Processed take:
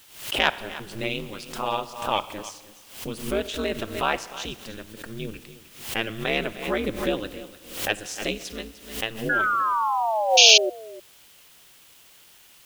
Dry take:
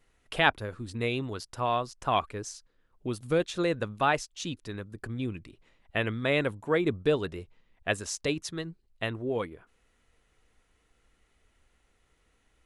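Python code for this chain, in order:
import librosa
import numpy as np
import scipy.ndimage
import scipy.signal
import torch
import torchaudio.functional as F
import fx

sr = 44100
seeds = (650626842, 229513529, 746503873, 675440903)

p1 = fx.tracing_dist(x, sr, depth_ms=0.023)
p2 = fx.low_shelf(p1, sr, hz=73.0, db=-11.0)
p3 = fx.rev_schroeder(p2, sr, rt60_s=1.5, comb_ms=30, drr_db=15.0)
p4 = fx.spec_paint(p3, sr, seeds[0], shape='fall', start_s=9.29, length_s=1.41, low_hz=470.0, high_hz=1600.0, level_db=-21.0)
p5 = p4 + fx.echo_single(p4, sr, ms=302, db=-16.0, dry=0)
p6 = p5 * np.sin(2.0 * np.pi * 110.0 * np.arange(len(p5)) / sr)
p7 = fx.rider(p6, sr, range_db=3, speed_s=2.0)
p8 = p6 + (p7 * 10.0 ** (1.5 / 20.0))
p9 = fx.spec_paint(p8, sr, seeds[1], shape='noise', start_s=10.37, length_s=0.21, low_hz=2300.0, high_hz=6700.0, level_db=-10.0)
p10 = fx.quant_dither(p9, sr, seeds[2], bits=8, dither='triangular')
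p11 = fx.peak_eq(p10, sr, hz=3000.0, db=7.0, octaves=0.56)
p12 = fx.pre_swell(p11, sr, db_per_s=98.0)
y = p12 * 10.0 ** (-5.5 / 20.0)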